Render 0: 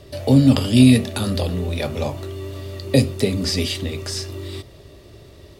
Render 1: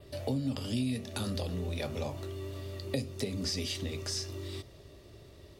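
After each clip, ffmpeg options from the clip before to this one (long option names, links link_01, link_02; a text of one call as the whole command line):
ffmpeg -i in.wav -af "adynamicequalizer=threshold=0.00708:dfrequency=5900:dqfactor=2.7:tfrequency=5900:tqfactor=2.7:attack=5:release=100:ratio=0.375:range=3:mode=boostabove:tftype=bell,acompressor=threshold=-22dB:ratio=4,volume=-9dB" out.wav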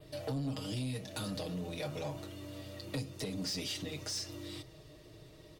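ffmpeg -i in.wav -af "aecho=1:1:6.4:0.92,asoftclip=type=tanh:threshold=-28dB,volume=-3dB" out.wav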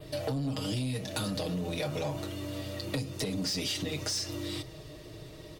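ffmpeg -i in.wav -af "acompressor=threshold=-38dB:ratio=6,volume=8.5dB" out.wav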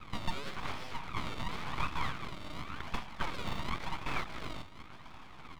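ffmpeg -i in.wav -af "acrusher=samples=33:mix=1:aa=0.000001:lfo=1:lforange=33:lforate=0.92,highpass=frequency=330:width=0.5412,highpass=frequency=330:width=1.3066,equalizer=frequency=480:width_type=q:width=4:gain=8,equalizer=frequency=690:width_type=q:width=4:gain=6,equalizer=frequency=1100:width_type=q:width=4:gain=-5,equalizer=frequency=1700:width_type=q:width=4:gain=8,equalizer=frequency=2900:width_type=q:width=4:gain=7,lowpass=frequency=3100:width=0.5412,lowpass=frequency=3100:width=1.3066,aeval=exprs='abs(val(0))':channel_layout=same,volume=-1.5dB" out.wav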